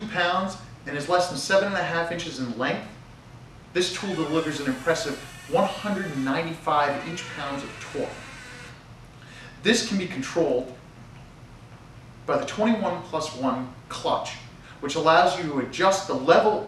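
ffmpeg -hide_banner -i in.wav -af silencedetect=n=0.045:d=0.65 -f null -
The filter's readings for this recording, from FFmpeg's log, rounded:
silence_start: 2.80
silence_end: 3.75 | silence_duration: 0.95
silence_start: 8.11
silence_end: 9.65 | silence_duration: 1.54
silence_start: 10.63
silence_end: 12.29 | silence_duration: 1.66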